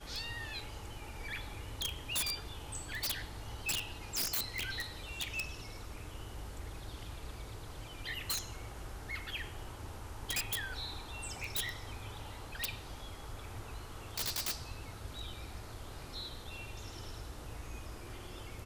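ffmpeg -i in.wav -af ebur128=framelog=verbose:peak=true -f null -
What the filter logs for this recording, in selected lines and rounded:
Integrated loudness:
  I:         -40.4 LUFS
  Threshold: -50.4 LUFS
Loudness range:
  LRA:         6.6 LU
  Threshold: -60.1 LUFS
  LRA low:   -43.7 LUFS
  LRA high:  -37.1 LUFS
True peak:
  Peak:      -24.4 dBFS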